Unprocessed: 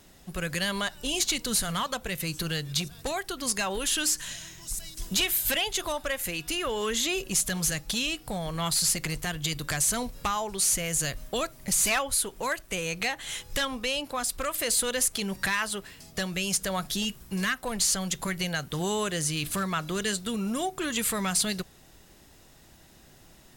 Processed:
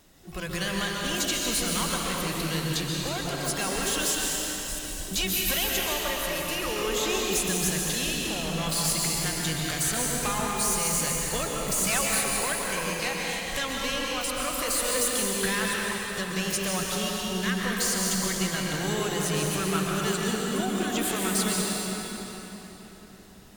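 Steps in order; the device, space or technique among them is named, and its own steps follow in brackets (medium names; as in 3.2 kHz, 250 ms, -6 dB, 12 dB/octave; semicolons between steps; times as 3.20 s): shimmer-style reverb (harmony voices +12 st -9 dB; reverberation RT60 4.2 s, pre-delay 117 ms, DRR -3 dB); trim -3.5 dB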